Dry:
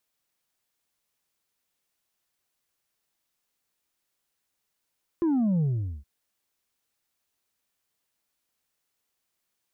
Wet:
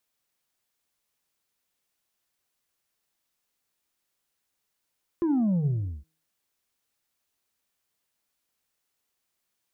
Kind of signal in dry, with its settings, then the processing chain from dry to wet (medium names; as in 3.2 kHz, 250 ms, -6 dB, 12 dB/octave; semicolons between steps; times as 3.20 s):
sub drop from 350 Hz, over 0.82 s, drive 3 dB, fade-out 0.43 s, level -21.5 dB
de-hum 159.6 Hz, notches 6